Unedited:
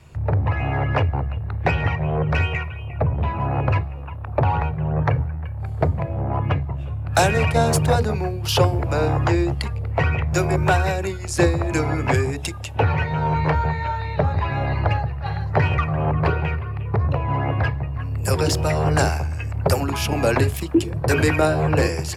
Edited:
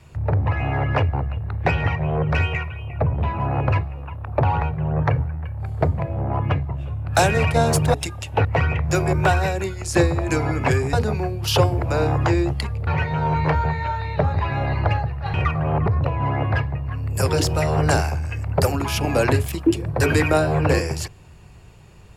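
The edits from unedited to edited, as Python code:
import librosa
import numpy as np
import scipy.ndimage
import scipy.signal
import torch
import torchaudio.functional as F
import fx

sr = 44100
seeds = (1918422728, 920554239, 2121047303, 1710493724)

y = fx.edit(x, sr, fx.swap(start_s=7.94, length_s=1.94, other_s=12.36, other_length_s=0.51),
    fx.cut(start_s=15.34, length_s=0.33),
    fx.cut(start_s=16.19, length_s=0.75), tone=tone)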